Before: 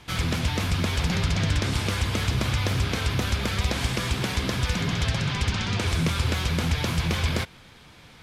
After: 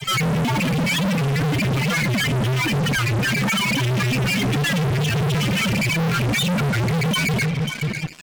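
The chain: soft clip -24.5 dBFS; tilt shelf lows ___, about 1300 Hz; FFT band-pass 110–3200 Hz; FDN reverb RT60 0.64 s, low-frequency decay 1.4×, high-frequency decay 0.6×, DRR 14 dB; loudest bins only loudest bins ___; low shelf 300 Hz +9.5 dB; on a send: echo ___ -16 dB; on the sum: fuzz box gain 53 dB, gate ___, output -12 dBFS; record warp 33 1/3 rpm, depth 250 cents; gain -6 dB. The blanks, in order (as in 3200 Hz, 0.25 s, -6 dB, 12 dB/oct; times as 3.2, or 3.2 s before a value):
-5.5 dB, 4, 0.539 s, -58 dBFS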